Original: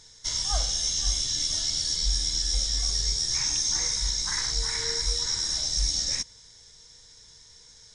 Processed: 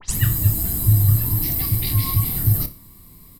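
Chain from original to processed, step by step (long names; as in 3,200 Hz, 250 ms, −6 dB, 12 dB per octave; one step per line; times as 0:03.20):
turntable start at the beginning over 0.40 s
bass and treble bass +9 dB, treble −3 dB
mains-hum notches 50/100/150/200/250/300/350 Hz
comb filter 2.4 ms, depth 31%
repeating echo 68 ms, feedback 55%, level −13 dB
wrong playback speed 33 rpm record played at 78 rpm
level +4.5 dB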